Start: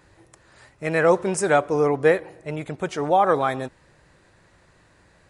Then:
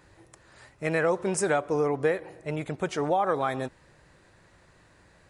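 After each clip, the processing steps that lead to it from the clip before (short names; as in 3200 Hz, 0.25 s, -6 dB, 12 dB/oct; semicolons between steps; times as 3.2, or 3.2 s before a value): compressor 3:1, threshold -21 dBFS, peak gain reduction 7.5 dB; gain -1.5 dB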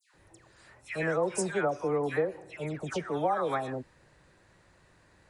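dispersion lows, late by 0.144 s, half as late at 1700 Hz; gain -3.5 dB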